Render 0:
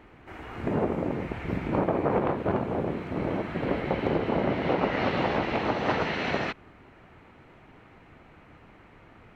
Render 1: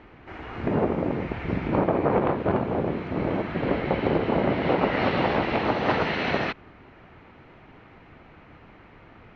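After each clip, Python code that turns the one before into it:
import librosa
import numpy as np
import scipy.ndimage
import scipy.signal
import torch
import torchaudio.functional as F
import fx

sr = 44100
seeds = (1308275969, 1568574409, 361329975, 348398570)

y = scipy.signal.sosfilt(scipy.signal.butter(4, 5400.0, 'lowpass', fs=sr, output='sos'), x)
y = F.gain(torch.from_numpy(y), 3.0).numpy()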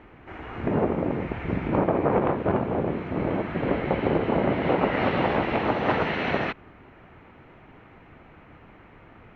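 y = fx.peak_eq(x, sr, hz=4800.0, db=-9.0, octaves=0.73)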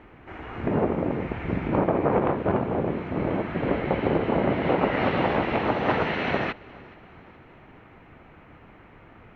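y = fx.echo_feedback(x, sr, ms=424, feedback_pct=48, wet_db=-23.0)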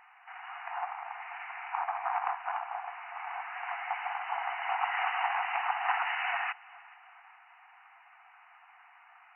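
y = fx.brickwall_bandpass(x, sr, low_hz=690.0, high_hz=3000.0)
y = F.gain(torch.from_numpy(y), -2.5).numpy()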